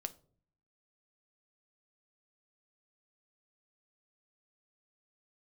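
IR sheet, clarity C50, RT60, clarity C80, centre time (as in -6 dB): 18.5 dB, 0.50 s, 23.5 dB, 3 ms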